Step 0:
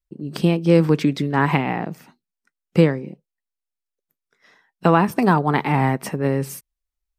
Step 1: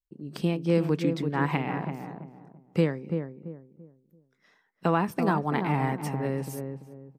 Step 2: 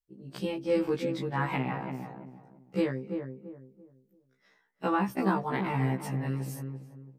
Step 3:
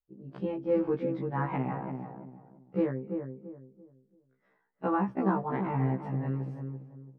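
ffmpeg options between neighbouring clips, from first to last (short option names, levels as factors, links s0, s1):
-filter_complex "[0:a]asplit=2[s0][s1];[s1]adelay=337,lowpass=f=880:p=1,volume=0.531,asplit=2[s2][s3];[s3]adelay=337,lowpass=f=880:p=1,volume=0.32,asplit=2[s4][s5];[s5]adelay=337,lowpass=f=880:p=1,volume=0.32,asplit=2[s6][s7];[s7]adelay=337,lowpass=f=880:p=1,volume=0.32[s8];[s0][s2][s4][s6][s8]amix=inputs=5:normalize=0,volume=0.355"
-af "afftfilt=real='re*1.73*eq(mod(b,3),0)':imag='im*1.73*eq(mod(b,3),0)':win_size=2048:overlap=0.75"
-af "lowpass=1300"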